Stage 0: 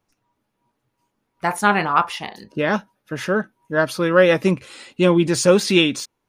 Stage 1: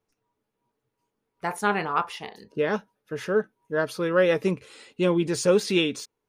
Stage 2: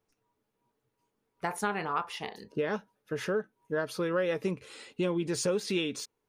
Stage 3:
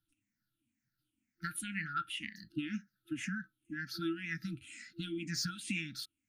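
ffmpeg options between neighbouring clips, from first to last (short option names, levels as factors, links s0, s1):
-af "equalizer=f=440:t=o:w=0.21:g=11.5,volume=0.398"
-af "acompressor=threshold=0.0355:ratio=3"
-af "afftfilt=real='re*pow(10,18/40*sin(2*PI*(0.61*log(max(b,1)*sr/1024/100)/log(2)-(-2)*(pts-256)/sr)))':imag='im*pow(10,18/40*sin(2*PI*(0.61*log(max(b,1)*sr/1024/100)/log(2)-(-2)*(pts-256)/sr)))':win_size=1024:overlap=0.75,afftfilt=real='re*(1-between(b*sr/4096,340,1300))':imag='im*(1-between(b*sr/4096,340,1300))':win_size=4096:overlap=0.75,volume=0.501"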